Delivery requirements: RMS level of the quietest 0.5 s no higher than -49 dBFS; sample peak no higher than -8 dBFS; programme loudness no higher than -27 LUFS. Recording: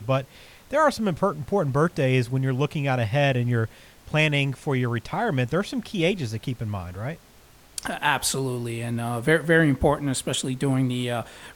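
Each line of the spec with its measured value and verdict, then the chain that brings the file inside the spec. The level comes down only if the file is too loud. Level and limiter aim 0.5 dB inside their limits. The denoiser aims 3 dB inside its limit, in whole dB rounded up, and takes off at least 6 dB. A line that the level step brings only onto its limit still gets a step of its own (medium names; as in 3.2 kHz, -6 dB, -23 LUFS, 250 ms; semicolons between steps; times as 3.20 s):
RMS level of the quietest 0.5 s -52 dBFS: pass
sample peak -6.0 dBFS: fail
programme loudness -24.5 LUFS: fail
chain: trim -3 dB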